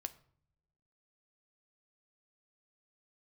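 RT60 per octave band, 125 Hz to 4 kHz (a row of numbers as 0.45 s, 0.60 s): 1.3 s, 1.2 s, 0.80 s, 0.55 s, 0.45 s, 0.40 s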